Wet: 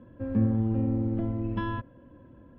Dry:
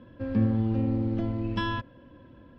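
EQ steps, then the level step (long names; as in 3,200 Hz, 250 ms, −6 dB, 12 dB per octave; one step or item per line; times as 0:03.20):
high-frequency loss of the air 230 metres
high-shelf EQ 2,400 Hz −11 dB
0.0 dB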